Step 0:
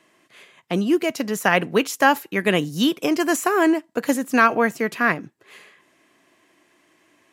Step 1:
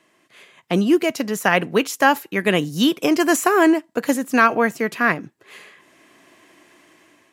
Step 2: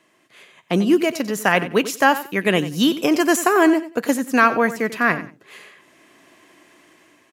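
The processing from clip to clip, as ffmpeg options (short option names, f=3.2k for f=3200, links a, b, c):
-af "dynaudnorm=f=260:g=5:m=9dB,volume=-1dB"
-af "aecho=1:1:92|184:0.2|0.0419"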